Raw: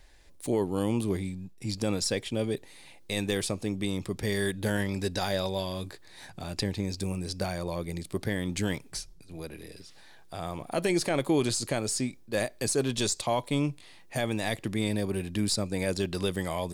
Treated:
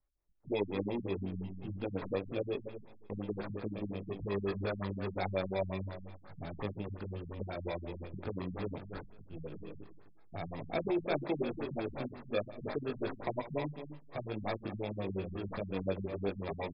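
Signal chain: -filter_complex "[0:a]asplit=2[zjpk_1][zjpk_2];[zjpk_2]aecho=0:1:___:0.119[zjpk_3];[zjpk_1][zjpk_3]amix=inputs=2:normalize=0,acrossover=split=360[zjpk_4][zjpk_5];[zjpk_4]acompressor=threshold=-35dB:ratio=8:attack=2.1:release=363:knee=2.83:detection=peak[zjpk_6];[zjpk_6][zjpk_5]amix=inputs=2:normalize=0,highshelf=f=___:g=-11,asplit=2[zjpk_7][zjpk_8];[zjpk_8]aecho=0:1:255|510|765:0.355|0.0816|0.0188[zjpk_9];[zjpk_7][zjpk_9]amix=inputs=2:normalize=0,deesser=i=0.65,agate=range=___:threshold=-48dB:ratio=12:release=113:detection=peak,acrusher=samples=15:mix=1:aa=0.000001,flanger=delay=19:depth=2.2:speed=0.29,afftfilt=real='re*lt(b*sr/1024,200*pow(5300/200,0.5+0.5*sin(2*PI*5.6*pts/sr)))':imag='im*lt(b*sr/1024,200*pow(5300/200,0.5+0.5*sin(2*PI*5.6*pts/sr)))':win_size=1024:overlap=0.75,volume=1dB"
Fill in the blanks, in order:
114, 2500, -26dB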